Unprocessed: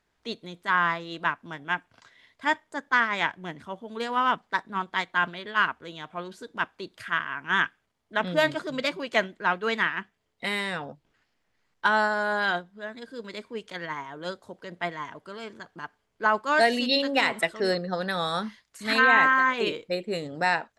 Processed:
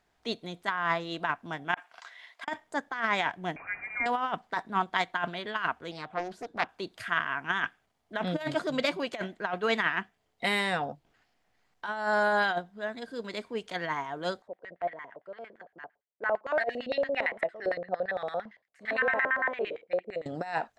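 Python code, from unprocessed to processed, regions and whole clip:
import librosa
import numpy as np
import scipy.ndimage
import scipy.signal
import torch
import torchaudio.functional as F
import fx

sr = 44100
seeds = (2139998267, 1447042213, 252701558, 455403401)

y = fx.chain(x, sr, fx.highpass(hz=970.0, slope=12),
    fx.high_shelf(hz=2900.0, db=-7.5),
    fx.over_compress(threshold_db=-45.0, ratio=-0.5), at=(1.74, 2.48))
y = fx.chain(y, sr, fx.delta_mod(bps=64000, step_db=-40.0),
    fx.highpass(hz=180.0, slope=12),
    fx.freq_invert(carrier_hz=2600), at=(3.56, 4.06))
y = fx.chain(y, sr, fx.high_shelf(hz=2300.0, db=-6.5),
    fx.doppler_dist(depth_ms=0.51), at=(5.91, 6.69))
y = fx.chain(y, sr, fx.gate_hold(open_db=-50.0, close_db=-54.0, hold_ms=71.0, range_db=-21, attack_ms=1.4, release_ms=100.0),
    fx.low_shelf(hz=290.0, db=12.0),
    fx.filter_lfo_bandpass(shape='square', hz=8.8, low_hz=560.0, high_hz=1900.0, q=4.5), at=(14.42, 20.26))
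y = fx.peak_eq(y, sr, hz=730.0, db=8.5, octaves=0.29)
y = fx.over_compress(y, sr, threshold_db=-25.0, ratio=-0.5)
y = y * librosa.db_to_amplitude(-1.5)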